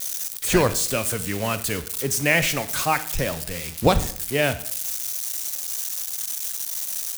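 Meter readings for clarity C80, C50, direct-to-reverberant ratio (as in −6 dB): 18.0 dB, 14.5 dB, 12.0 dB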